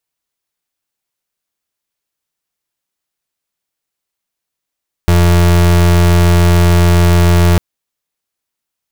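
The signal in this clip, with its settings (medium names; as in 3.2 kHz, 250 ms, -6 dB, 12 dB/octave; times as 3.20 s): pulse 86.9 Hz, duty 34% -8 dBFS 2.50 s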